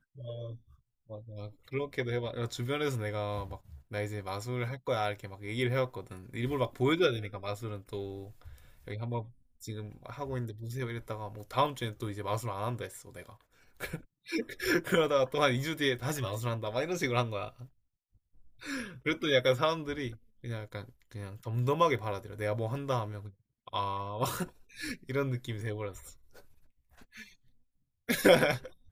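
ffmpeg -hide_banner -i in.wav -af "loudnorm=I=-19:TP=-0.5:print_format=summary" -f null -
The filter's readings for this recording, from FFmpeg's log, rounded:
Input Integrated:    -32.5 LUFS
Input True Peak:      -9.0 dBTP
Input LRA:             5.8 LU
Input Threshold:     -43.7 LUFS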